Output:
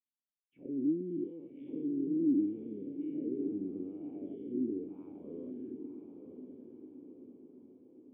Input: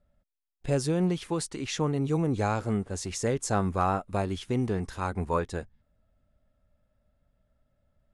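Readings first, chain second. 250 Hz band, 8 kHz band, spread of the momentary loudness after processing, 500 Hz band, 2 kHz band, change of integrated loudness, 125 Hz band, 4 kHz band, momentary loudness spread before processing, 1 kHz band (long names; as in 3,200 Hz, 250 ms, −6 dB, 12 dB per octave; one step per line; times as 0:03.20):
−2.5 dB, below −40 dB, 20 LU, −11.0 dB, below −35 dB, −7.5 dB, −22.0 dB, below −40 dB, 6 LU, below −35 dB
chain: every bin's largest magnitude spread in time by 240 ms
low shelf with overshoot 470 Hz +7 dB, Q 1.5
envelope filter 310–3,200 Hz, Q 5.8, down, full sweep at −12 dBFS
formant resonators in series i
feedback delay with all-pass diffusion 1,034 ms, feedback 52%, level −7 dB
level −3.5 dB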